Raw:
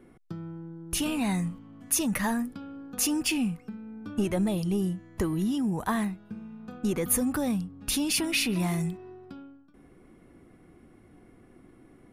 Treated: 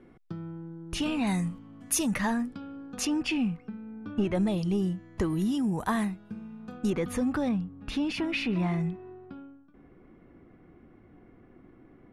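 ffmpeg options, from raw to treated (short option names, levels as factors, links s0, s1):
-af "asetnsamples=n=441:p=0,asendcmd='1.27 lowpass f 11000;2.14 lowpass f 6000;3.05 lowpass f 3300;4.35 lowpass f 6300;5.3 lowpass f 11000;6.9 lowpass f 4100;7.49 lowpass f 2500',lowpass=4800"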